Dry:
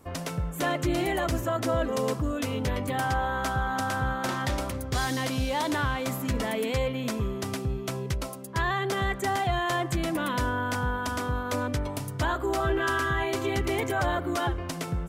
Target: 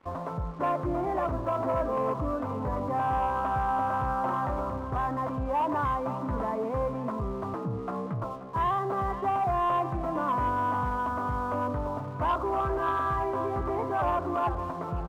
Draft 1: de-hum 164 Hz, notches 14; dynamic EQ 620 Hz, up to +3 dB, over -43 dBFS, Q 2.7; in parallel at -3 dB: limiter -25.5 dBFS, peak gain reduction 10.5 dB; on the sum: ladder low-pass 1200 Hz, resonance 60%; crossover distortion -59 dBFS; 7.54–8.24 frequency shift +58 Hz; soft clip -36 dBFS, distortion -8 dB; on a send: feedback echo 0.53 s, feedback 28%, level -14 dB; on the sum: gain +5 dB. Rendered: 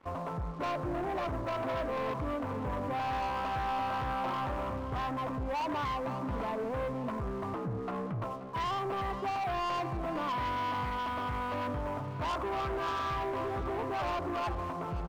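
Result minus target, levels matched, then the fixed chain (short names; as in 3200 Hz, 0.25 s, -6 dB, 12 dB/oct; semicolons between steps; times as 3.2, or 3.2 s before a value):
soft clip: distortion +12 dB
de-hum 164 Hz, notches 14; dynamic EQ 620 Hz, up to +3 dB, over -43 dBFS, Q 2.7; in parallel at -3 dB: limiter -25.5 dBFS, peak gain reduction 10.5 dB; on the sum: ladder low-pass 1200 Hz, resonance 60%; crossover distortion -59 dBFS; 7.54–8.24 frequency shift +58 Hz; soft clip -24.5 dBFS, distortion -20 dB; on a send: feedback echo 0.53 s, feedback 28%, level -14 dB; on the sum: gain +5 dB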